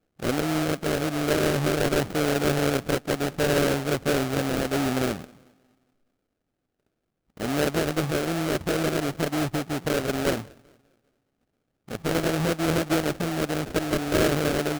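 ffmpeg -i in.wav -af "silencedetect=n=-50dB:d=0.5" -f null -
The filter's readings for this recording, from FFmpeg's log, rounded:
silence_start: 5.48
silence_end: 7.37 | silence_duration: 1.89
silence_start: 10.76
silence_end: 11.88 | silence_duration: 1.12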